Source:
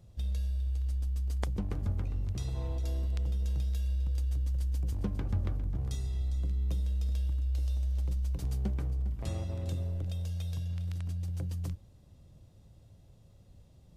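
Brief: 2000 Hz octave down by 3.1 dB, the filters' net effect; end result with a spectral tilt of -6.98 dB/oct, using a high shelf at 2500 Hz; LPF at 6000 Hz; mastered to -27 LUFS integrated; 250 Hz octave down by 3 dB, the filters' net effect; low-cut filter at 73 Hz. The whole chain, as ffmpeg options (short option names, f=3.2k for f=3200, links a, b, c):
-af "highpass=73,lowpass=6k,equalizer=f=250:t=o:g=-4.5,equalizer=f=2k:t=o:g=-5.5,highshelf=f=2.5k:g=3,volume=11dB"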